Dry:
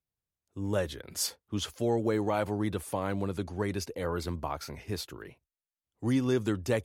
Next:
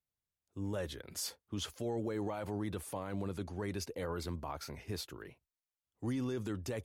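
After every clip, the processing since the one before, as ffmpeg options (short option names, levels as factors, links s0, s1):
-af "alimiter=level_in=1.12:limit=0.0631:level=0:latency=1:release=24,volume=0.891,volume=0.631"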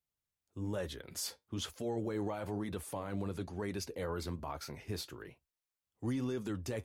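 -af "flanger=delay=4.4:depth=5.2:regen=-69:speed=1.1:shape=sinusoidal,volume=1.68"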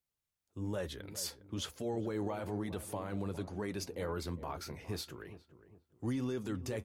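-filter_complex "[0:a]asplit=2[s0][s1];[s1]adelay=408,lowpass=f=860:p=1,volume=0.237,asplit=2[s2][s3];[s3]adelay=408,lowpass=f=860:p=1,volume=0.39,asplit=2[s4][s5];[s5]adelay=408,lowpass=f=860:p=1,volume=0.39,asplit=2[s6][s7];[s7]adelay=408,lowpass=f=860:p=1,volume=0.39[s8];[s0][s2][s4][s6][s8]amix=inputs=5:normalize=0"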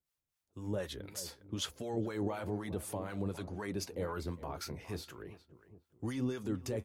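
-filter_complex "[0:a]acrossover=split=710[s0][s1];[s0]aeval=exprs='val(0)*(1-0.7/2+0.7/2*cos(2*PI*4*n/s))':c=same[s2];[s1]aeval=exprs='val(0)*(1-0.7/2-0.7/2*cos(2*PI*4*n/s))':c=same[s3];[s2][s3]amix=inputs=2:normalize=0,volume=1.5"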